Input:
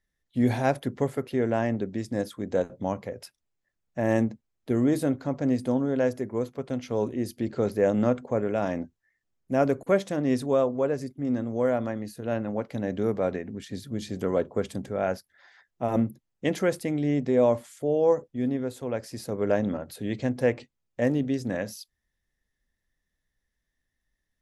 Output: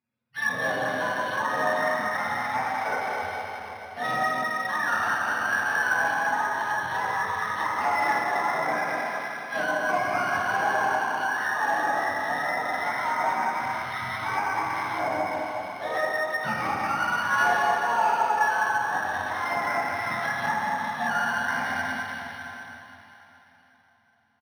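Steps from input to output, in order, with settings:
frequency axis turned over on the octave scale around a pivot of 650 Hz
parametric band 1,500 Hz +9 dB 2.2 octaves
on a send: single-tap delay 204 ms −7 dB
on the sum: soft clipping −18 dBFS, distortion −11 dB
high-pass filter 130 Hz 12 dB per octave
high-shelf EQ 4,800 Hz +6 dB
dense smooth reverb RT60 3.7 s, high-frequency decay 1×, DRR −7 dB
treble cut that deepens with the level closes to 2,200 Hz, closed at −14.5 dBFS
linearly interpolated sample-rate reduction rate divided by 6×
level −7 dB

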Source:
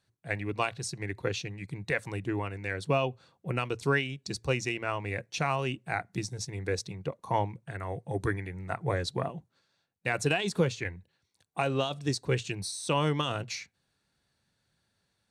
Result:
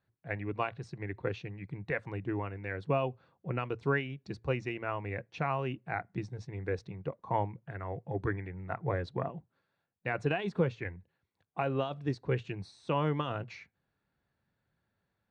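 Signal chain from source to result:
low-pass filter 2,000 Hz 12 dB per octave
level −2.5 dB

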